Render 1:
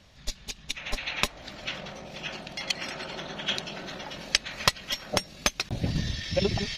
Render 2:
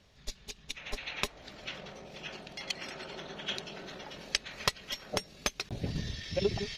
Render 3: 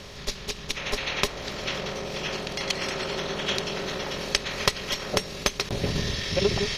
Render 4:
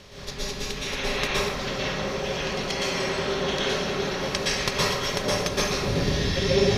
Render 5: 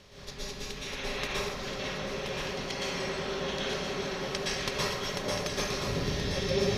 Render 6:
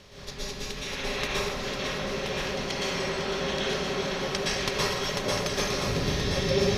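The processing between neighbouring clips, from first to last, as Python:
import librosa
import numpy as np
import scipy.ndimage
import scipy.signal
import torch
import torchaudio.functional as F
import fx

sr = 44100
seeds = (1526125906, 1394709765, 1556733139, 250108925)

y1 = fx.peak_eq(x, sr, hz=420.0, db=8.0, octaves=0.27)
y1 = y1 * librosa.db_to_amplitude(-7.0)
y2 = fx.bin_compress(y1, sr, power=0.6)
y2 = y2 * librosa.db_to_amplitude(4.5)
y3 = fx.rev_plate(y2, sr, seeds[0], rt60_s=1.5, hf_ratio=0.5, predelay_ms=105, drr_db=-8.5)
y3 = y3 * librosa.db_to_amplitude(-6.0)
y4 = y3 + 10.0 ** (-7.0 / 20.0) * np.pad(y3, (int(1026 * sr / 1000.0), 0))[:len(y3)]
y4 = y4 * librosa.db_to_amplitude(-7.5)
y5 = y4 + 10.0 ** (-9.5 / 20.0) * np.pad(y4, (int(502 * sr / 1000.0), 0))[:len(y4)]
y5 = y5 * librosa.db_to_amplitude(3.5)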